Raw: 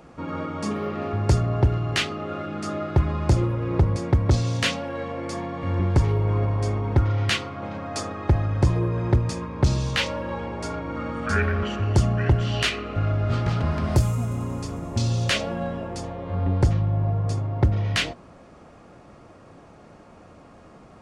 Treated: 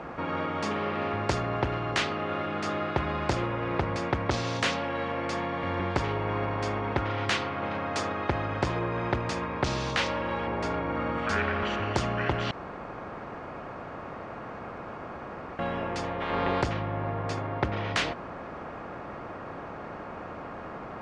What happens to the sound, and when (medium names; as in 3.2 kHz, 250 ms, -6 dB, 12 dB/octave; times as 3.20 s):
10.47–11.18 s: tilt shelf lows +4.5 dB
12.51–15.59 s: room tone
16.20–16.61 s: spectral peaks clipped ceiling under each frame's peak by 22 dB
whole clip: low-pass 1.1 kHz 12 dB/octave; tilt EQ +3 dB/octave; spectrum-flattening compressor 2:1; trim +2.5 dB